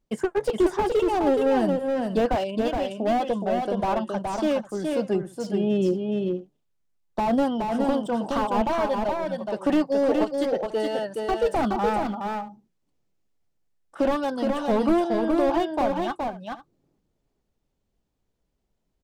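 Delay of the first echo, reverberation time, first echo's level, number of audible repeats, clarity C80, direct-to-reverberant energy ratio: 420 ms, no reverb audible, −4.0 dB, 2, no reverb audible, no reverb audible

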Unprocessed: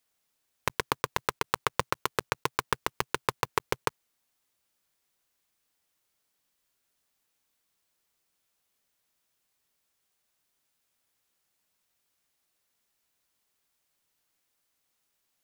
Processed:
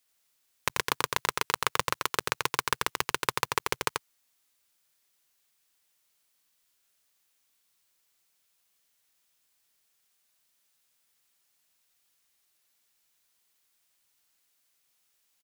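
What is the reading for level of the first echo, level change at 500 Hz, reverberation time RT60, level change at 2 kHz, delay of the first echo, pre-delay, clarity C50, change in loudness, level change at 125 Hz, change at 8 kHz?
−4.0 dB, −1.5 dB, no reverb audible, +2.5 dB, 87 ms, no reverb audible, no reverb audible, +2.0 dB, −2.5 dB, +5.0 dB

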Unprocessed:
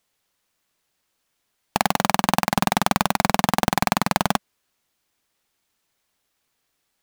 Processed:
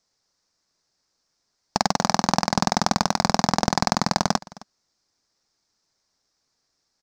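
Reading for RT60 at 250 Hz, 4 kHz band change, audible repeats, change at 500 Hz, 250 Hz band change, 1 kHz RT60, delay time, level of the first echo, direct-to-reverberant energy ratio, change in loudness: no reverb audible, +1.5 dB, 1, −0.5 dB, 0.0 dB, no reverb audible, 263 ms, −21.5 dB, no reverb audible, −1.0 dB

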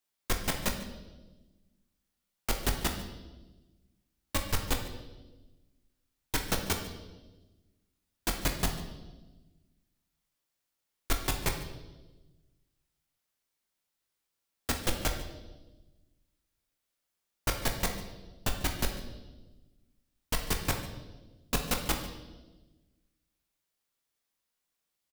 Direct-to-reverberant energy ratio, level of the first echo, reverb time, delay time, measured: 3.5 dB, −17.5 dB, 1.2 s, 145 ms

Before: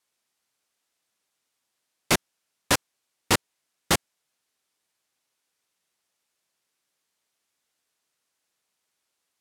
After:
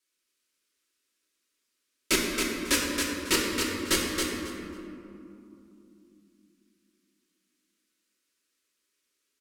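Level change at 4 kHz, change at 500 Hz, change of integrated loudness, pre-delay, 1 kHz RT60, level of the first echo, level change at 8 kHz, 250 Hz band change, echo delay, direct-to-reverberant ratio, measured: +1.0 dB, +0.5 dB, −2.0 dB, 3 ms, 2.6 s, −4.0 dB, +1.0 dB, +3.5 dB, 273 ms, −5.5 dB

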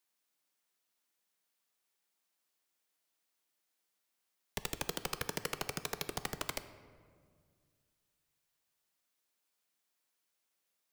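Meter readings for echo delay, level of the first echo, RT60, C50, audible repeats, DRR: no echo audible, no echo audible, 2.0 s, 12.5 dB, no echo audible, 11.0 dB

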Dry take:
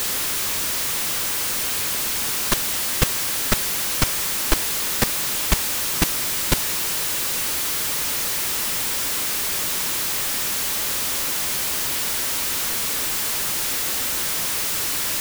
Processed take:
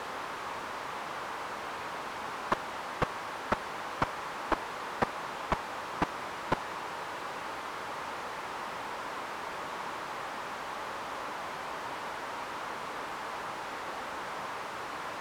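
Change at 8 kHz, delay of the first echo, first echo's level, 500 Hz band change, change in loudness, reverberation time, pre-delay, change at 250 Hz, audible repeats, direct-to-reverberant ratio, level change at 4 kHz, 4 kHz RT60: −29.5 dB, no echo audible, no echo audible, −4.5 dB, −16.0 dB, no reverb audible, no reverb audible, −9.5 dB, no echo audible, no reverb audible, −20.0 dB, no reverb audible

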